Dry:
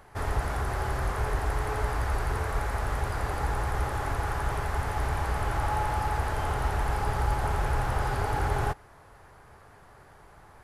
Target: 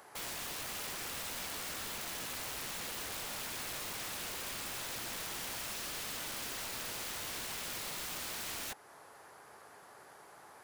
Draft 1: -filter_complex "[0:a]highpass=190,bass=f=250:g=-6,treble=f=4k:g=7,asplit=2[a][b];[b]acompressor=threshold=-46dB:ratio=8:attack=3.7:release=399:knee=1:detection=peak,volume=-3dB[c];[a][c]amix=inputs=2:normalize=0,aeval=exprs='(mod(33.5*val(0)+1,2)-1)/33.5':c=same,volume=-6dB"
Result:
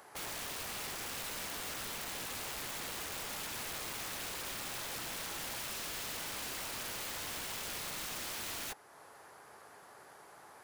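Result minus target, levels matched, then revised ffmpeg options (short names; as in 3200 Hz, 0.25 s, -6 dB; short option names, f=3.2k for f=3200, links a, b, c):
compressor: peak gain reduction +6 dB
-filter_complex "[0:a]highpass=190,bass=f=250:g=-6,treble=f=4k:g=7,asplit=2[a][b];[b]acompressor=threshold=-39dB:ratio=8:attack=3.7:release=399:knee=1:detection=peak,volume=-3dB[c];[a][c]amix=inputs=2:normalize=0,aeval=exprs='(mod(33.5*val(0)+1,2)-1)/33.5':c=same,volume=-6dB"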